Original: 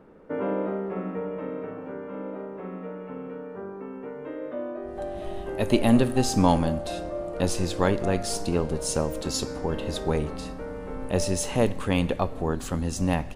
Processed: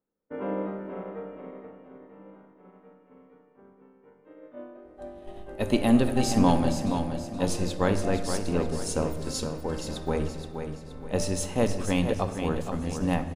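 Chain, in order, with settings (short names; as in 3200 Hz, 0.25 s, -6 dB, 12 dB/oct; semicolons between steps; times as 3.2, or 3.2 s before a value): expander -25 dBFS; feedback echo 0.473 s, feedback 38%, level -7.5 dB; on a send at -10 dB: reverb RT60 1.8 s, pre-delay 4 ms; on the sum: gain -2.5 dB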